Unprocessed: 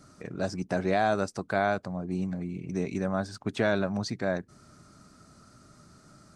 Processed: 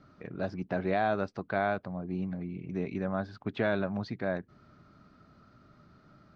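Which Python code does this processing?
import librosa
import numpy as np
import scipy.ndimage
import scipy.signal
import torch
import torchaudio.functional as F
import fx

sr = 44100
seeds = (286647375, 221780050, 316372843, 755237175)

y = scipy.signal.sosfilt(scipy.signal.butter(4, 3700.0, 'lowpass', fs=sr, output='sos'), x)
y = F.gain(torch.from_numpy(y), -3.0).numpy()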